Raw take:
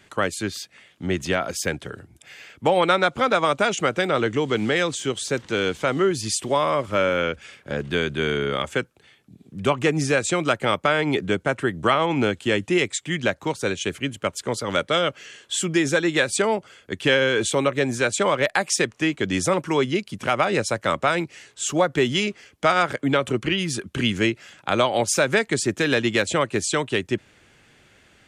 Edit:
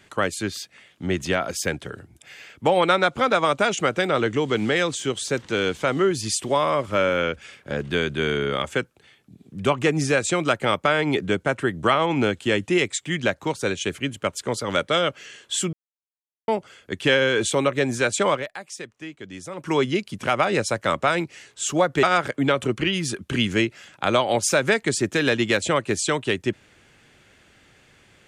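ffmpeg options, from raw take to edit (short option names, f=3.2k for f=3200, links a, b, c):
-filter_complex "[0:a]asplit=6[a][b][c][d][e][f];[a]atrim=end=15.73,asetpts=PTS-STARTPTS,afade=t=out:st=15.726:d=0.004:c=hsin[g];[b]atrim=start=15.73:end=16.48,asetpts=PTS-STARTPTS,volume=0[h];[c]atrim=start=16.48:end=18.5,asetpts=PTS-STARTPTS,afade=t=in:d=0.004:c=hsin,afade=t=out:st=1.86:d=0.16:c=qua:silence=0.188365[i];[d]atrim=start=18.5:end=19.52,asetpts=PTS-STARTPTS,volume=-14.5dB[j];[e]atrim=start=19.52:end=22.032,asetpts=PTS-STARTPTS,afade=t=in:d=0.16:c=qua:silence=0.188365[k];[f]atrim=start=22.678[l];[g][h][i][j][k]concat=n=5:v=0:a=1[m];[m][l]acrossfade=d=0.004:c1=hsin:c2=hsin"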